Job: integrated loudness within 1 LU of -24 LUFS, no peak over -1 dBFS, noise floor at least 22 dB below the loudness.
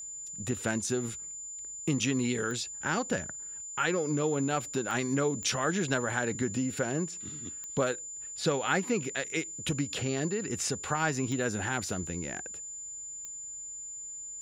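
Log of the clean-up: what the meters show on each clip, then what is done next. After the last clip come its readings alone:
clicks found 6; steady tone 7.1 kHz; tone level -39 dBFS; loudness -32.0 LUFS; peak level -13.0 dBFS; loudness target -24.0 LUFS
-> de-click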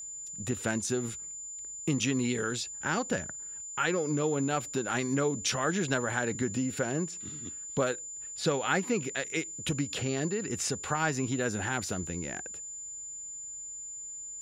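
clicks found 0; steady tone 7.1 kHz; tone level -39 dBFS
-> band-stop 7.1 kHz, Q 30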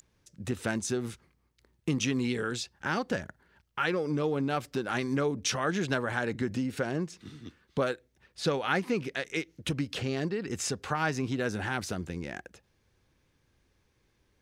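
steady tone not found; loudness -32.0 LUFS; peak level -13.0 dBFS; loudness target -24.0 LUFS
-> trim +8 dB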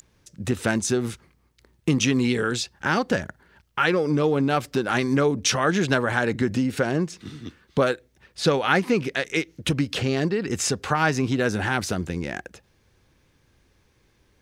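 loudness -24.0 LUFS; peak level -5.0 dBFS; noise floor -64 dBFS

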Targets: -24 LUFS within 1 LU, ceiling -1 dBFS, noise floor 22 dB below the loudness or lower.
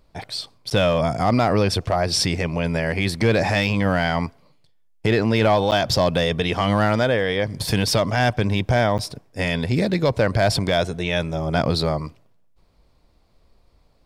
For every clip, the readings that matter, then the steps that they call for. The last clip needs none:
clipped samples 0.2%; clipping level -10.5 dBFS; dropouts 3; longest dropout 9.4 ms; loudness -21.0 LUFS; peak level -10.5 dBFS; loudness target -24.0 LUFS
-> clip repair -10.5 dBFS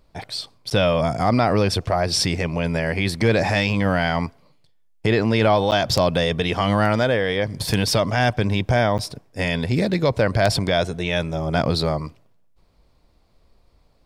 clipped samples 0.0%; dropouts 3; longest dropout 9.4 ms
-> interpolate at 0.70/5.71/8.98 s, 9.4 ms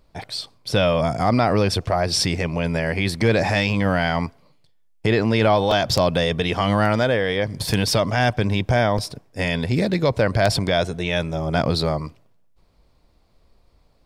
dropouts 0; loudness -21.0 LUFS; peak level -1.5 dBFS; loudness target -24.0 LUFS
-> trim -3 dB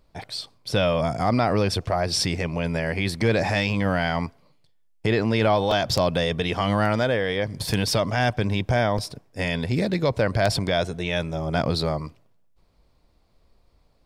loudness -24.0 LUFS; peak level -4.5 dBFS; noise floor -62 dBFS

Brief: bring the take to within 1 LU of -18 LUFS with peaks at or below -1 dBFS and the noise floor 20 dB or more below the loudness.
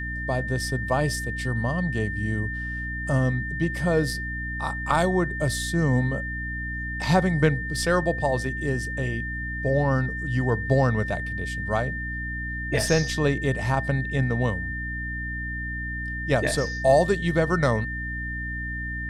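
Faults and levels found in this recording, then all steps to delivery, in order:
hum 60 Hz; highest harmonic 300 Hz; hum level -31 dBFS; steady tone 1.8 kHz; tone level -31 dBFS; loudness -25.5 LUFS; peak level -7.0 dBFS; loudness target -18.0 LUFS
-> hum notches 60/120/180/240/300 Hz; band-stop 1.8 kHz, Q 30; trim +7.5 dB; peak limiter -1 dBFS

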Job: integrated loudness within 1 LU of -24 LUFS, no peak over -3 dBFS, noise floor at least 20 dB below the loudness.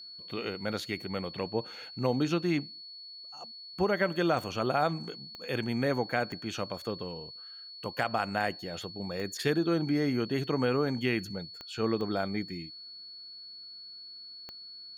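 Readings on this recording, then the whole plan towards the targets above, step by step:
clicks found 7; steady tone 4.4 kHz; tone level -44 dBFS; loudness -32.0 LUFS; peak level -14.0 dBFS; loudness target -24.0 LUFS
-> de-click; band-stop 4.4 kHz, Q 30; trim +8 dB

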